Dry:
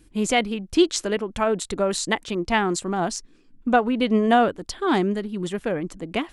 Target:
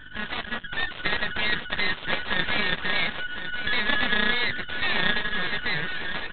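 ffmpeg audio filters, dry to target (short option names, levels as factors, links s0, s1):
-filter_complex "[0:a]afftfilt=real='real(if(lt(b,272),68*(eq(floor(b/68),0)*1+eq(floor(b/68),1)*0+eq(floor(b/68),2)*3+eq(floor(b/68),3)*2)+mod(b,68),b),0)':imag='imag(if(lt(b,272),68*(eq(floor(b/68),0)*1+eq(floor(b/68),1)*0+eq(floor(b/68),2)*3+eq(floor(b/68),3)*2)+mod(b,68),b),0)':win_size=2048:overlap=0.75,highpass=f=89:w=0.5412,highpass=f=89:w=1.3066,alimiter=limit=0.133:level=0:latency=1:release=44,dynaudnorm=f=100:g=13:m=2.37,tremolo=f=30:d=0.261,asplit=2[s0][s1];[s1]highpass=f=720:p=1,volume=3.16,asoftclip=type=tanh:threshold=0.224[s2];[s0][s2]amix=inputs=2:normalize=0,lowpass=f=1700:p=1,volume=0.501,aeval=exprs='val(0)+0.00126*(sin(2*PI*50*n/s)+sin(2*PI*2*50*n/s)/2+sin(2*PI*3*50*n/s)/3+sin(2*PI*4*50*n/s)/4+sin(2*PI*5*50*n/s)/5)':c=same,aeval=exprs='0.188*(cos(1*acos(clip(val(0)/0.188,-1,1)))-cos(1*PI/2))+0.0133*(cos(2*acos(clip(val(0)/0.188,-1,1)))-cos(2*PI/2))+0.0668*(cos(4*acos(clip(val(0)/0.188,-1,1)))-cos(4*PI/2))+0.0119*(cos(5*acos(clip(val(0)/0.188,-1,1)))-cos(5*PI/2))+0.0841*(cos(7*acos(clip(val(0)/0.188,-1,1)))-cos(7*PI/2))':c=same,aresample=8000,aeval=exprs='max(val(0),0)':c=same,aresample=44100,asplit=2[s3][s4];[s4]adelay=13,volume=0.237[s5];[s3][s5]amix=inputs=2:normalize=0,aecho=1:1:1054:0.299,volume=2.11"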